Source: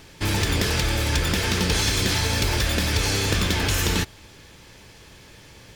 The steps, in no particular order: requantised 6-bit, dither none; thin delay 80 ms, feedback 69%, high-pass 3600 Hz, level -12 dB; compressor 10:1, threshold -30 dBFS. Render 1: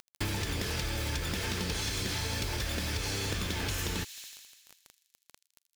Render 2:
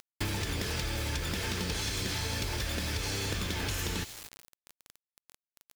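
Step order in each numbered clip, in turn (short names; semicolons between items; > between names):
requantised > thin delay > compressor; thin delay > requantised > compressor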